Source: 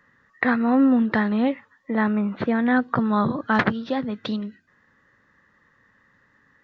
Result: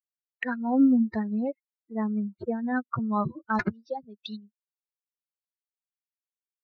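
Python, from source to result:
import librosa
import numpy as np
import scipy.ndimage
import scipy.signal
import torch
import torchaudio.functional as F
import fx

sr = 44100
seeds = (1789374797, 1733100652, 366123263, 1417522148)

y = fx.bin_expand(x, sr, power=3.0)
y = fx.env_phaser(y, sr, low_hz=340.0, high_hz=3100.0, full_db=-32.0)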